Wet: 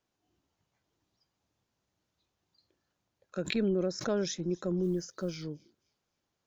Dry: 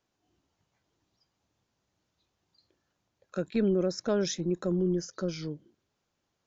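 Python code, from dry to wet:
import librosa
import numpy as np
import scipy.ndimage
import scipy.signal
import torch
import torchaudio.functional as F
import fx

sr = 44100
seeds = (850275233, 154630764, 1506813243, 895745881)

y = fx.block_float(x, sr, bits=7, at=(4.82, 5.42), fade=0.02)
y = fx.echo_wet_highpass(y, sr, ms=263, feedback_pct=31, hz=2700.0, wet_db=-23.0)
y = fx.pre_swell(y, sr, db_per_s=110.0, at=(3.38, 4.29))
y = y * librosa.db_to_amplitude(-3.0)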